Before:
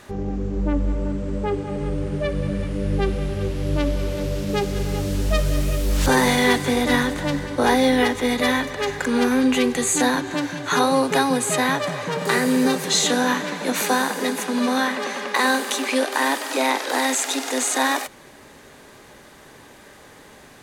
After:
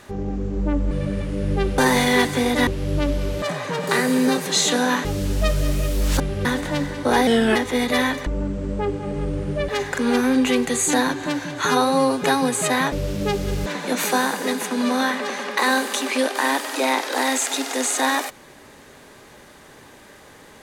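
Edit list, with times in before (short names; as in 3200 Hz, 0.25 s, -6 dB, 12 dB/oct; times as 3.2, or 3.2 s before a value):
0.91–2.33 move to 8.76
3.2–3.45 swap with 6.09–6.98
4.2–4.94 swap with 11.8–13.43
7.8–8.05 speed 88%
10.73–11.12 stretch 1.5×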